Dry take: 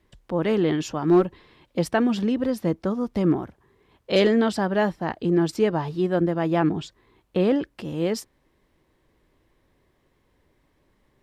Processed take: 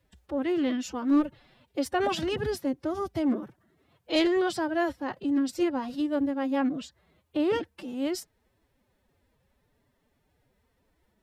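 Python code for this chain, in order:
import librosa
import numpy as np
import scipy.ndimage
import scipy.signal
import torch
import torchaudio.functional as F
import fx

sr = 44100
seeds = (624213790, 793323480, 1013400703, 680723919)

y = fx.high_shelf(x, sr, hz=7300.0, db=5.5)
y = fx.pitch_keep_formants(y, sr, semitones=8.5)
y = y * 10.0 ** (-5.0 / 20.0)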